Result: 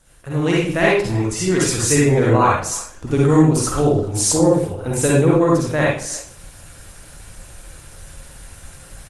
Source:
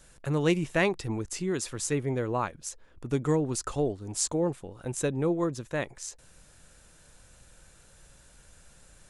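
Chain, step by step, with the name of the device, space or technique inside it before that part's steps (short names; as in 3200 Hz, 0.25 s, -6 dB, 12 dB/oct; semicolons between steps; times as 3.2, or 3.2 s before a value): speakerphone in a meeting room (reverb RT60 0.45 s, pre-delay 45 ms, DRR -5.5 dB; speakerphone echo 0.31 s, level -21 dB; AGC gain up to 11 dB; Opus 24 kbps 48000 Hz)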